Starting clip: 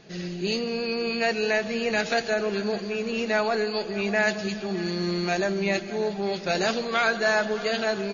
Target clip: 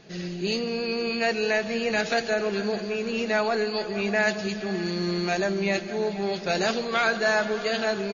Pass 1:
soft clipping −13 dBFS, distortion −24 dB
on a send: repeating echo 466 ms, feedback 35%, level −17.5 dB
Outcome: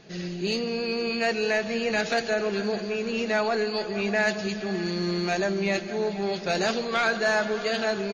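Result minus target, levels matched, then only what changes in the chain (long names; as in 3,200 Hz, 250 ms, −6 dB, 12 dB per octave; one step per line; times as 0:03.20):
soft clipping: distortion +12 dB
change: soft clipping −6 dBFS, distortion −36 dB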